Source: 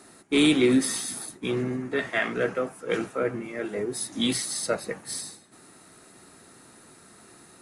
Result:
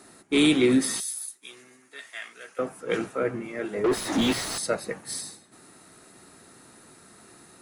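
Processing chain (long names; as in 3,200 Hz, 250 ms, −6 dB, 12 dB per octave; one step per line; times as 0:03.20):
0:01.00–0:02.59: first difference
0:03.84–0:04.58: mid-hump overdrive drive 34 dB, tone 1,300 Hz, clips at −13.5 dBFS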